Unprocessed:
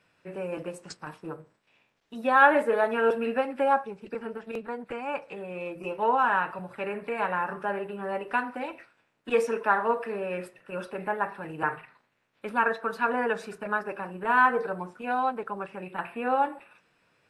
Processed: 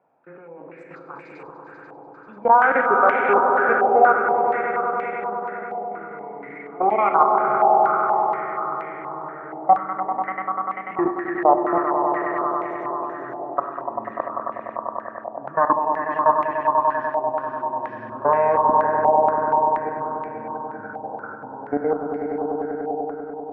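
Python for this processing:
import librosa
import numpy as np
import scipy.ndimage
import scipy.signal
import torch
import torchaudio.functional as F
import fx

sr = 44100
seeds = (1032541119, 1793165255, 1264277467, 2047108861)

y = fx.speed_glide(x, sr, from_pct=95, to_pct=52)
y = scipy.signal.sosfilt(scipy.signal.butter(2, 200.0, 'highpass', fs=sr, output='sos'), y)
y = fx.level_steps(y, sr, step_db=24)
y = fx.echo_swell(y, sr, ms=98, loudest=5, wet_db=-8)
y = fx.rev_schroeder(y, sr, rt60_s=0.75, comb_ms=28, drr_db=9.0)
y = fx.filter_held_lowpass(y, sr, hz=4.2, low_hz=790.0, high_hz=2200.0)
y = y * librosa.db_to_amplitude(4.0)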